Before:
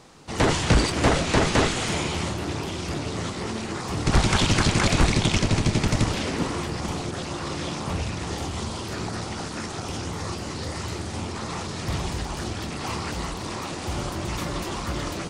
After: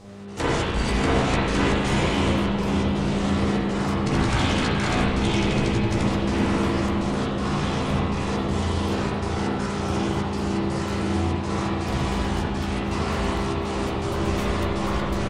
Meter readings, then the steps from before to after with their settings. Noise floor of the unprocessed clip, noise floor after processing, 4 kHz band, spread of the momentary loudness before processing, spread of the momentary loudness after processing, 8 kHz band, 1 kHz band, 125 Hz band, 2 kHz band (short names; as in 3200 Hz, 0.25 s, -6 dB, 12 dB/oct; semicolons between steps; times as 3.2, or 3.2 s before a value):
-33 dBFS, -27 dBFS, -2.0 dB, 11 LU, 4 LU, -6.0 dB, +2.5 dB, +1.5 dB, +0.5 dB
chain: compressor, threshold -22 dBFS, peak gain reduction 8.5 dB; step gate "xx.xx.xxx" 122 bpm -12 dB; buzz 100 Hz, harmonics 8, -44 dBFS -4 dB/oct; doubler 15 ms -6.5 dB; on a send: analogue delay 0.565 s, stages 4096, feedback 76%, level -6.5 dB; on the sum: spring tank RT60 1.5 s, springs 35/39/48 ms, chirp 40 ms, DRR -6.5 dB; gain -3.5 dB